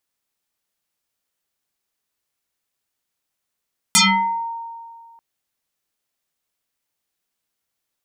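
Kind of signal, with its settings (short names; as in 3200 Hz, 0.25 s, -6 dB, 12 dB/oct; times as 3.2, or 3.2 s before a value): FM tone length 1.24 s, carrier 923 Hz, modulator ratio 1.21, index 9.8, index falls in 0.53 s exponential, decay 2.03 s, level -9 dB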